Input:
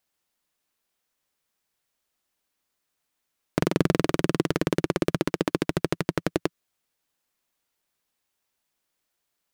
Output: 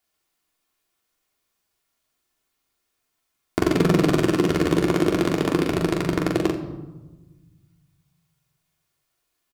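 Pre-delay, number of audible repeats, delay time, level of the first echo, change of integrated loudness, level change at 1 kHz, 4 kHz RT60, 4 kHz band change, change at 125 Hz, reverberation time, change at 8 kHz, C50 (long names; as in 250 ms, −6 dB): 3 ms, 2, 42 ms, −3.0 dB, +5.0 dB, +4.5 dB, 0.70 s, +3.5 dB, +4.5 dB, 1.2 s, +3.5 dB, 7.0 dB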